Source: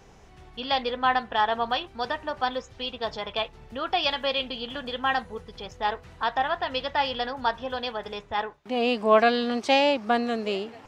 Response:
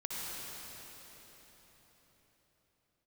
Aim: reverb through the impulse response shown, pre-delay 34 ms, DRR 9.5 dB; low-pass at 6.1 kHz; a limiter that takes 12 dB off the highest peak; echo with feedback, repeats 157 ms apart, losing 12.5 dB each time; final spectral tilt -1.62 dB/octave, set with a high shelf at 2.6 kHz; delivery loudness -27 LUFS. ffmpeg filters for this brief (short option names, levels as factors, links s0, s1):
-filter_complex "[0:a]lowpass=6100,highshelf=f=2600:g=-5,alimiter=limit=0.112:level=0:latency=1,aecho=1:1:157|314|471:0.237|0.0569|0.0137,asplit=2[s0][s1];[1:a]atrim=start_sample=2205,adelay=34[s2];[s1][s2]afir=irnorm=-1:irlink=0,volume=0.237[s3];[s0][s3]amix=inputs=2:normalize=0,volume=1.41"